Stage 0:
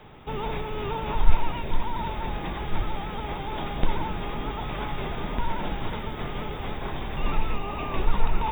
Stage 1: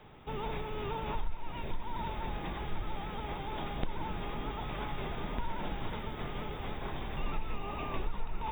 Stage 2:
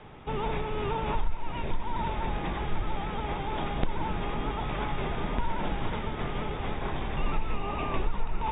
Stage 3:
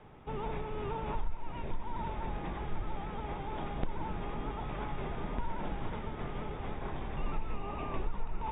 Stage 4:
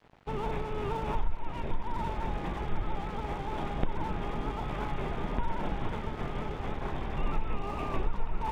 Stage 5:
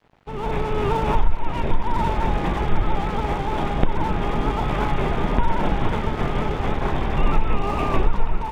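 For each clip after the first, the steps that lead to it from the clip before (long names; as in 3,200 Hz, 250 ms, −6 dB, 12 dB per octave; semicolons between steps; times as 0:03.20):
downward compressor 6 to 1, threshold −22 dBFS, peak gain reduction 14.5 dB; level −6.5 dB
low-pass filter 3,600 Hz; level +6.5 dB
high-shelf EQ 2,900 Hz −9.5 dB; level −6 dB
dead-zone distortion −52 dBFS; level +5 dB
automatic gain control gain up to 12 dB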